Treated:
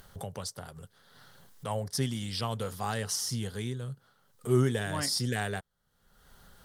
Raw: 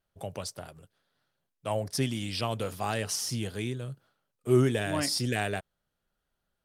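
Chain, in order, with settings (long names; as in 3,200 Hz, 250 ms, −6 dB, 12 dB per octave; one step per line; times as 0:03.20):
upward compression, threshold −33 dBFS
thirty-one-band graphic EQ 315 Hz −10 dB, 630 Hz −7 dB, 2,500 Hz −10 dB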